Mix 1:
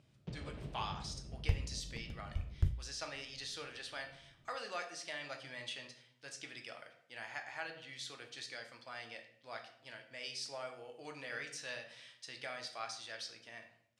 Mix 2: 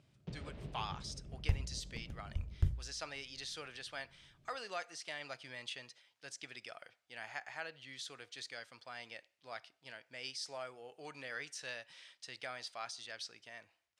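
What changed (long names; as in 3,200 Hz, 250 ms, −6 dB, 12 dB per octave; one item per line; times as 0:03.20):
speech +3.0 dB
reverb: off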